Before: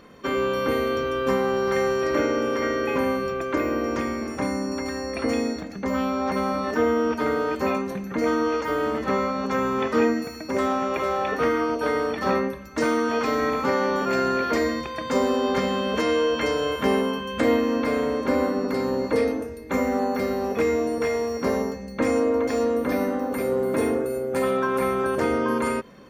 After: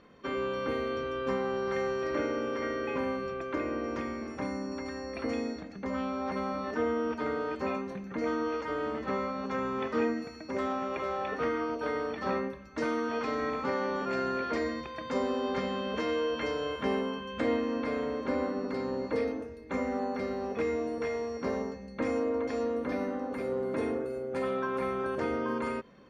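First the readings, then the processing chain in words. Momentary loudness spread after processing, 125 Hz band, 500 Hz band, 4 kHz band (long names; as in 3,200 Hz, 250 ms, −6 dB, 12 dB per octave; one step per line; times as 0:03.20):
5 LU, −8.5 dB, −8.5 dB, −9.5 dB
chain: low-pass filter 5,100 Hz 12 dB per octave
level −8.5 dB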